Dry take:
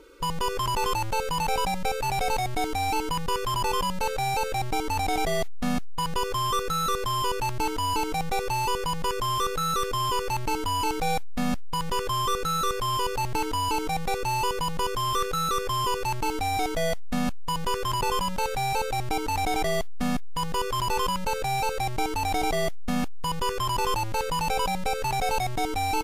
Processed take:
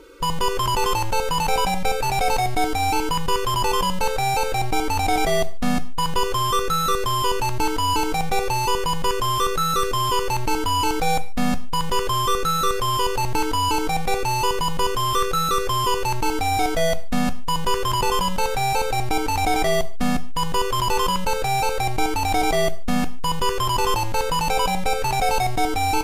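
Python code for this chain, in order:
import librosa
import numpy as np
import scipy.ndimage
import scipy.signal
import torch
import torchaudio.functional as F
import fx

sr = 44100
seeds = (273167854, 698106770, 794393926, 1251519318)

y = fx.rev_gated(x, sr, seeds[0], gate_ms=170, shape='falling', drr_db=10.5)
y = y * librosa.db_to_amplitude(5.0)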